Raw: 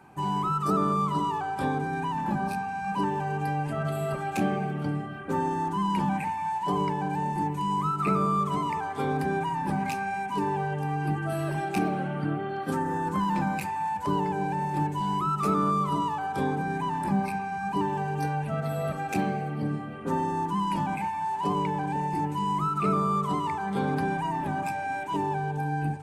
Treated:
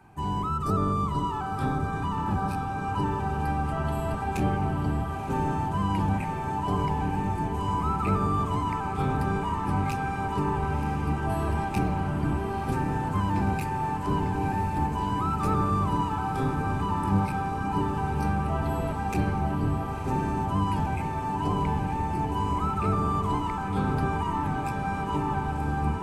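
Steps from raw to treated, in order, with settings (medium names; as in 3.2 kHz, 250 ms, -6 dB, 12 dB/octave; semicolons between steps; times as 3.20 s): octave divider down 1 oct, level +2 dB; band-stop 540 Hz, Q 12; echo that smears into a reverb 991 ms, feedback 77%, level -7 dB; trim -2.5 dB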